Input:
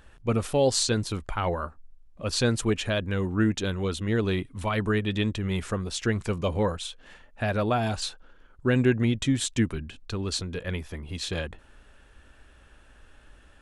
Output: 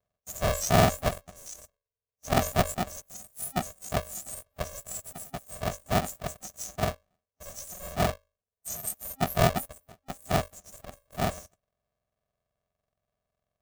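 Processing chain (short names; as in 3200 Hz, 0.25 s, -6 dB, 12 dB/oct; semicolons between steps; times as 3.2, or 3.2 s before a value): spectrum mirrored in octaves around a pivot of 1800 Hz; gate -50 dBFS, range -10 dB; tilt -3.5 dB/oct; notches 50/100/150/200/250/300/350 Hz; sample leveller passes 3; FFT band-reject 530–5900 Hz; polarity switched at an audio rate 270 Hz; gain -5.5 dB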